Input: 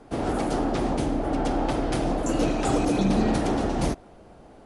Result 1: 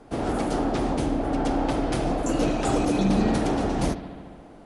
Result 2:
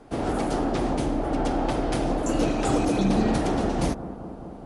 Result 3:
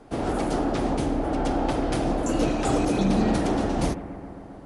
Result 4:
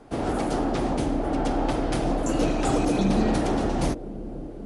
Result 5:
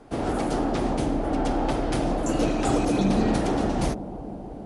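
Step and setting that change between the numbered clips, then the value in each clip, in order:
analogue delay, time: 72, 211, 133, 529, 321 ms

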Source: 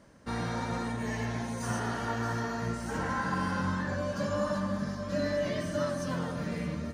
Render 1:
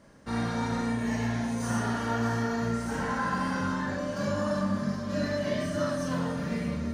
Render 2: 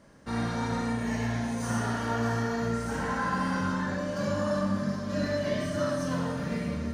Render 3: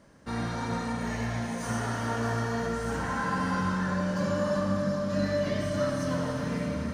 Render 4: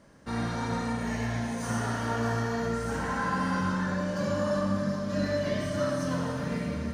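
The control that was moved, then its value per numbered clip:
Schroeder reverb, RT60: 0.32, 0.71, 4.3, 1.7 s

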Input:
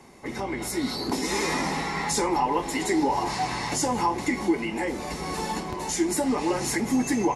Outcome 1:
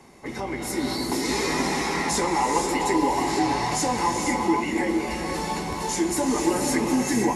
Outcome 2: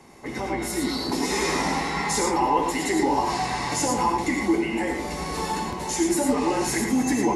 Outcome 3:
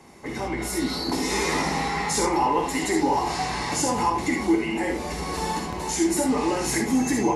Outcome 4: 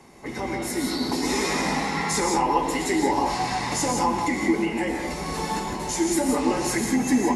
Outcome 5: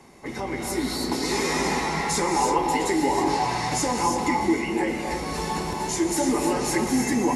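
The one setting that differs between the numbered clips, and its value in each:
non-linear reverb, gate: 530, 130, 90, 200, 350 ms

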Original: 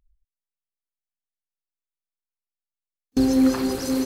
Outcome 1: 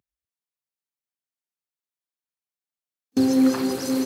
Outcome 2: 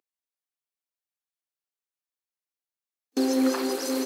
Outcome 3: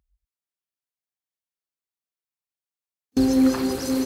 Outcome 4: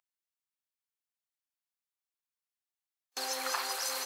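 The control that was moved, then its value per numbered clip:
HPF, cutoff: 110, 300, 41, 770 Hz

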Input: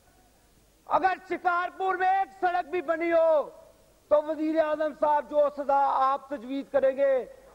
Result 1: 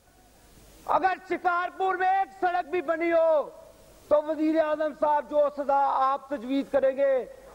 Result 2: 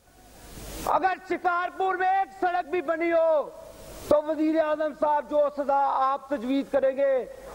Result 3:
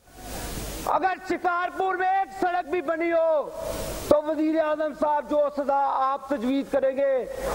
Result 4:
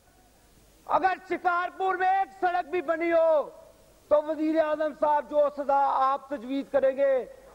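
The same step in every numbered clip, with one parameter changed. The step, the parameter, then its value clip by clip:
recorder AGC, rising by: 13, 33, 84, 5.3 dB/s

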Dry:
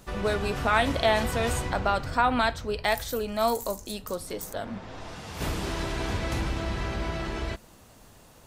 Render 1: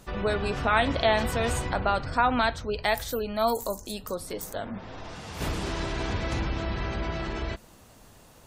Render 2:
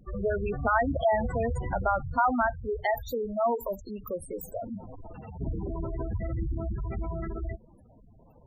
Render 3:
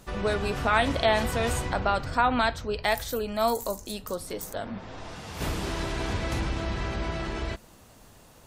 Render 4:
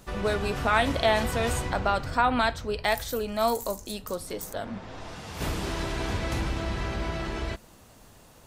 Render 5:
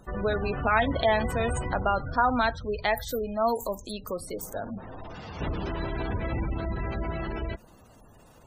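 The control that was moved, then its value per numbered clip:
spectral gate, under each frame's peak: -35, -10, -45, -60, -20 dB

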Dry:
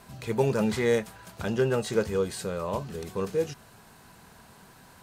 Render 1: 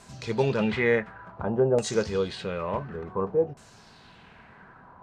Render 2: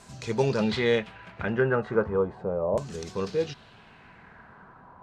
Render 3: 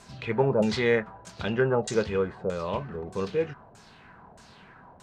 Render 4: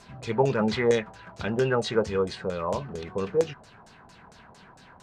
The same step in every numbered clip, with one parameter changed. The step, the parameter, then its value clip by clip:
LFO low-pass, rate: 0.56, 0.36, 1.6, 4.4 Hz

